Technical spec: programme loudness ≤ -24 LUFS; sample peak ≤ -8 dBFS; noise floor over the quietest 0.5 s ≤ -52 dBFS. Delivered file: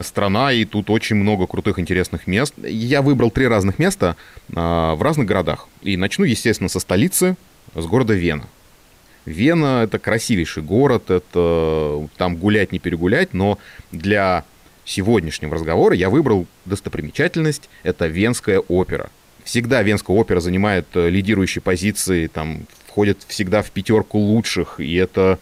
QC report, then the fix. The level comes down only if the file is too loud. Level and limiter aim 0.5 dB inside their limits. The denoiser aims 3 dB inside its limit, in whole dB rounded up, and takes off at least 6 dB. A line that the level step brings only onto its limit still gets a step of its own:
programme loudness -18.5 LUFS: fail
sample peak -5.0 dBFS: fail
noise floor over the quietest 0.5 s -50 dBFS: fail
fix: trim -6 dB

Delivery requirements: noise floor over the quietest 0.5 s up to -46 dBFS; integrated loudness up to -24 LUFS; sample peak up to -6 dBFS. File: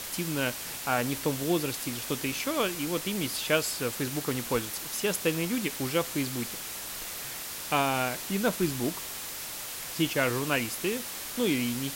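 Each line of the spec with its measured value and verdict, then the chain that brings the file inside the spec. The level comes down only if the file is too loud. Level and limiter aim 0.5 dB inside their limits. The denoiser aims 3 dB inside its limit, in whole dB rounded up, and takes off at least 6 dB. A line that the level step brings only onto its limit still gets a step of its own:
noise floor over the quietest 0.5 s -38 dBFS: fail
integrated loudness -30.0 LUFS: pass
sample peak -11.0 dBFS: pass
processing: noise reduction 11 dB, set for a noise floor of -38 dBFS

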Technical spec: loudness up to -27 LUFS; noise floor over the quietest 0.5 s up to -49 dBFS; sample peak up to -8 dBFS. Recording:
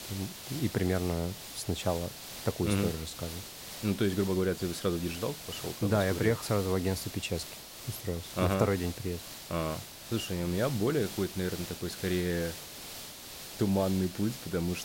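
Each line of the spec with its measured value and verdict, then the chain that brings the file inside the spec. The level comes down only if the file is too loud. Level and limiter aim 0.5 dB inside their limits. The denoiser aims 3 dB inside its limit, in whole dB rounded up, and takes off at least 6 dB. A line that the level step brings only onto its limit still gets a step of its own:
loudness -32.5 LUFS: pass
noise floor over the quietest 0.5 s -45 dBFS: fail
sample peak -14.0 dBFS: pass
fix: noise reduction 7 dB, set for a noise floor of -45 dBFS

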